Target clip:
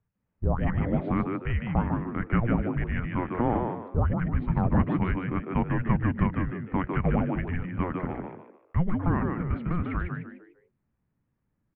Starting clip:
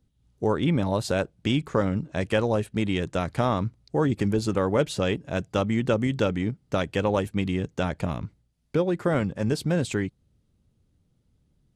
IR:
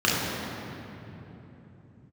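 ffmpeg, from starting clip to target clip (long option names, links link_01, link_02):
-filter_complex "[0:a]highpass=frequency=240:width_type=q:width=0.5412,highpass=frequency=240:width_type=q:width=1.307,lowpass=frequency=2400:width_type=q:width=0.5176,lowpass=frequency=2400:width_type=q:width=0.7071,lowpass=frequency=2400:width_type=q:width=1.932,afreqshift=-360,asplit=5[link_01][link_02][link_03][link_04][link_05];[link_02]adelay=150,afreqshift=91,volume=-5dB[link_06];[link_03]adelay=300,afreqshift=182,volume=-15.2dB[link_07];[link_04]adelay=450,afreqshift=273,volume=-25.3dB[link_08];[link_05]adelay=600,afreqshift=364,volume=-35.5dB[link_09];[link_01][link_06][link_07][link_08][link_09]amix=inputs=5:normalize=0"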